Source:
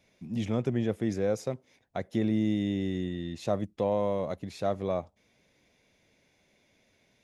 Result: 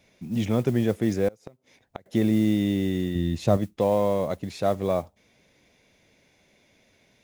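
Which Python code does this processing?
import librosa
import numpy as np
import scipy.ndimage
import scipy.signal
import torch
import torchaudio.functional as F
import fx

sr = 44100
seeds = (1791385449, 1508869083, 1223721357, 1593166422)

y = fx.mod_noise(x, sr, seeds[0], snr_db=28)
y = fx.gate_flip(y, sr, shuts_db=-24.0, range_db=-27, at=(1.28, 2.06))
y = fx.low_shelf(y, sr, hz=170.0, db=11.5, at=(3.15, 3.57))
y = y * 10.0 ** (5.5 / 20.0)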